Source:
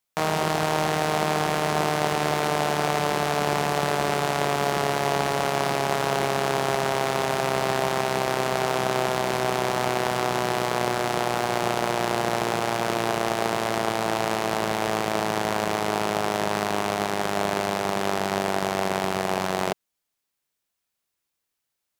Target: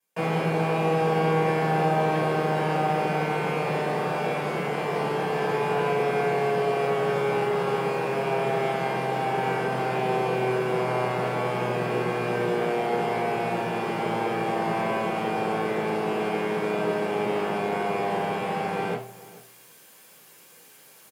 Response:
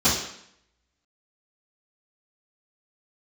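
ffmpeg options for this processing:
-filter_complex "[0:a]bandreject=f=57.82:t=h:w=4,bandreject=f=115.64:t=h:w=4,acrossover=split=820|2700[a][b][c];[c]aeval=exprs='(mod(7.94*val(0)+1,2)-1)/7.94':c=same[d];[a][b][d]amix=inputs=3:normalize=0,lowshelf=f=270:g=-5.5,areverse,acompressor=mode=upward:threshold=-30dB:ratio=2.5,areverse,aeval=exprs='(tanh(22.4*val(0)+0.05)-tanh(0.05))/22.4':c=same,acrossover=split=3500[e][f];[f]acompressor=threshold=-49dB:ratio=4:attack=1:release=60[g];[e][g]amix=inputs=2:normalize=0,asplit=2[h][i];[i]adelay=454.8,volume=-19dB,highshelf=f=4k:g=-10.2[j];[h][j]amix=inputs=2:normalize=0[k];[1:a]atrim=start_sample=2205,asetrate=88200,aresample=44100[l];[k][l]afir=irnorm=-1:irlink=0,asetrate=45938,aresample=44100,volume=-8.5dB"

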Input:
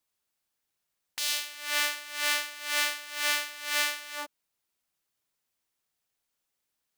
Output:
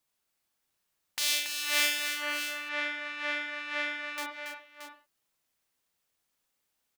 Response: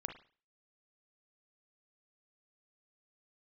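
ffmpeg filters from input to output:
-filter_complex "[0:a]asettb=1/sr,asplit=3[a][b][c];[a]atrim=end=2.064[d];[b]atrim=start=2.06:end=4.18,asetpts=PTS-STARTPTS,afade=t=in:d=0.004:c=qsin,afade=t=out:st=2.116:d=0.004:c=qsin,lowpass=1.8k[e];[c]atrim=start=4.176[f];[d][e]acrossfade=d=0.004:c1=hsin:c2=qsin[g];[g][f]acrossfade=d=0.004:c1=qsin:c2=hsin,aecho=1:1:280|626:0.422|0.335[h];[1:a]atrim=start_sample=2205,afade=t=out:st=0.24:d=0.01,atrim=end_sample=11025[i];[h][i]afir=irnorm=-1:irlink=0,volume=4dB"

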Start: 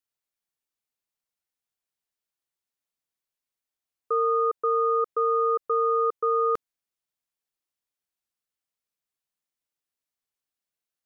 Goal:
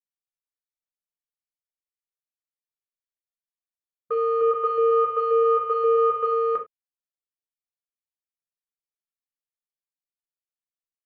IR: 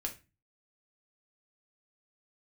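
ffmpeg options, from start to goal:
-filter_complex "[0:a]afwtdn=0.0178,aecho=1:1:1.7:0.58,asettb=1/sr,asplit=3[a][b][c];[a]atrim=end=4.274[d];[b]atrim=start=4.27:end=6.32,asetpts=PTS-STARTPTS,afade=t=in:d=0.004:c=qsin,afade=t=out:st=2.046:d=0.004:c=qsin,aecho=1:1:140|266|379.4|481.5|573.3:0.631|0.398|0.251|0.158|0.1,atrim=end_sample=90405[e];[c]atrim=start=6.316[f];[d][e]acrossfade=d=0.004:c1=hsin:c2=qsin[g];[g][f]acrossfade=d=0.004:c1=qsin:c2=hsin[h];[1:a]atrim=start_sample=2205,atrim=end_sample=4410,asetrate=40131,aresample=44100[i];[h][i]afir=irnorm=-1:irlink=0,volume=-2dB"

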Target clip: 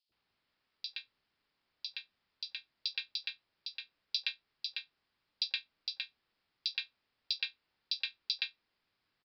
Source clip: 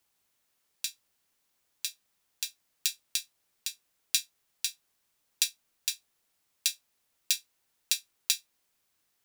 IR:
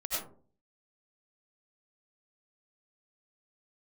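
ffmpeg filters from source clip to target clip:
-filter_complex "[0:a]acrossover=split=630|3700[a][b][c];[a]adelay=90[d];[b]adelay=120[e];[d][e][c]amix=inputs=3:normalize=0,aresample=11025,aresample=44100,volume=1dB"

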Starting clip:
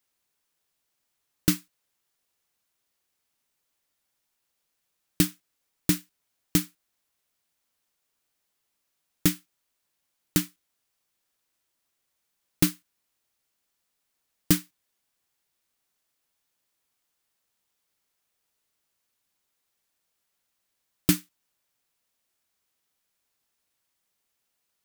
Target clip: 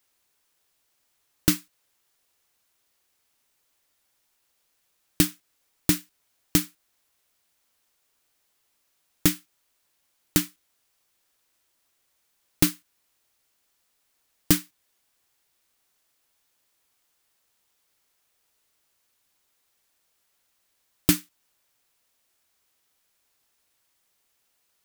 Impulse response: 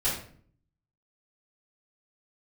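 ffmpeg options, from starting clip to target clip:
-filter_complex "[0:a]asplit=2[a][b];[b]acompressor=threshold=-30dB:ratio=6,volume=-1dB[c];[a][c]amix=inputs=2:normalize=0,equalizer=f=180:t=o:w=0.95:g=-4,volume=1dB"

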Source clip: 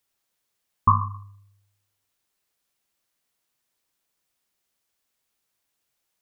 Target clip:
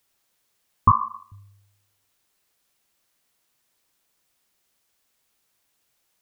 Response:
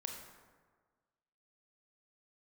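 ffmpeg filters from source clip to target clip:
-filter_complex "[0:a]asettb=1/sr,asplit=3[a][b][c];[a]atrim=end=0.914[d];[b]atrim=start=0.91:end=1.32,asetpts=PTS-STARTPTS,afade=t=in:d=0.004:c=qsin,afade=t=out:st=0.406:d=0.004:c=qsin,highpass=f=300:w=0.5412,highpass=f=300:w=1.3066[e];[c]atrim=start=1.316[f];[d][e]acrossfade=d=0.004:c1=hsin:c2=qsin[g];[g][f]acrossfade=d=0.004:c1=qsin:c2=hsin,asplit=2[h][i];[i]acompressor=threshold=-27dB:ratio=6,volume=0.5dB[j];[h][j]amix=inputs=2:normalize=0"

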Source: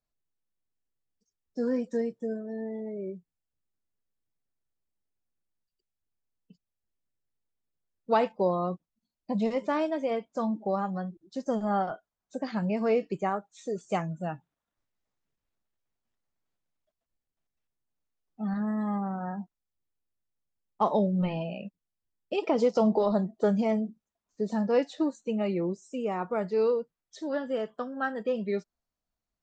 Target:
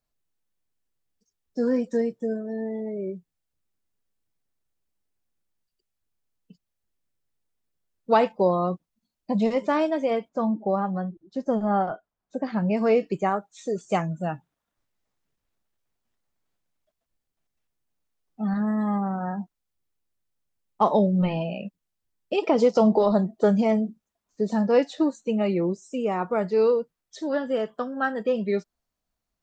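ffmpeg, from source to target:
-filter_complex "[0:a]asettb=1/sr,asplit=3[a][b][c];[a]atrim=end=10.294[d];[b]atrim=start=10.29:end=12.71,asetpts=PTS-STARTPTS,afade=t=in:d=0.004:c=qsin,afade=t=out:st=2.416:d=0.004:c=qsin,lowpass=f=1.7k:p=1[e];[c]atrim=start=12.706[f];[d][e]acrossfade=d=0.004:c1=hsin:c2=qsin[g];[g][f]acrossfade=d=0.004:c1=qsin:c2=hsin,volume=5dB"

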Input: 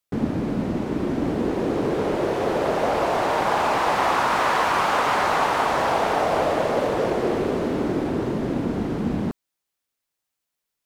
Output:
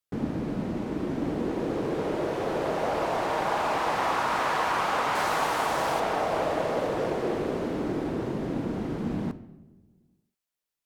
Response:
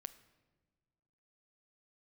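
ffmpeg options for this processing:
-filter_complex "[0:a]asettb=1/sr,asplit=3[a][b][c];[a]atrim=end=5.154[d];[b]atrim=start=5.15:end=6,asetpts=PTS-STARTPTS,afade=t=in:d=0.004:c=qsin,afade=t=out:st=0.846:d=0.004:c=qsin,highshelf=f=5.9k:g=9.5[e];[c]atrim=start=5.996[f];[d][e]acrossfade=d=0.004:c1=hsin:c2=qsin[g];[g][f]acrossfade=d=0.004:c1=qsin:c2=hsin[h];[1:a]atrim=start_sample=2205,asetrate=48510,aresample=44100[i];[h][i]afir=irnorm=-1:irlink=0"

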